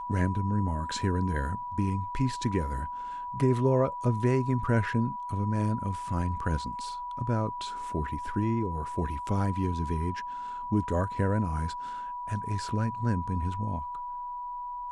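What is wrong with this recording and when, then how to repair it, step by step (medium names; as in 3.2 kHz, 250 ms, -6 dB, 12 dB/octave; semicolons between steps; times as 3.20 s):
whine 980 Hz -34 dBFS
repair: band-stop 980 Hz, Q 30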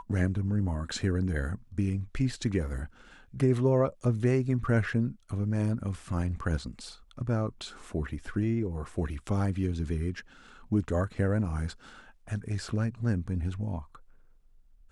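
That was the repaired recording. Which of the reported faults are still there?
nothing left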